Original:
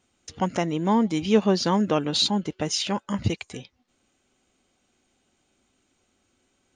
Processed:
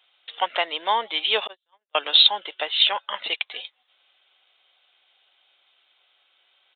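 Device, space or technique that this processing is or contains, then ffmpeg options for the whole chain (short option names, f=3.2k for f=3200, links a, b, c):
musical greeting card: -filter_complex "[0:a]asettb=1/sr,asplit=3[a][b][c];[a]atrim=end=1.474[d];[b]atrim=start=1.47:end=1.95,asetpts=PTS-STARTPTS,afade=t=in:d=0.004:c=qsin,afade=t=out:st=0.476:d=0.004:c=qsin,agate=range=-56dB:threshold=-15dB:ratio=16:detection=peak[e];[c]atrim=start=1.946[f];[d][e]acrossfade=d=0.004:c1=hsin:c2=qsin[g];[g][f]acrossfade=d=0.004:c1=qsin:c2=hsin,highshelf=f=2k:g=10,aresample=8000,aresample=44100,highpass=f=590:w=0.5412,highpass=f=590:w=1.3066,equalizer=f=3.5k:t=o:w=0.45:g=8,volume=2.5dB"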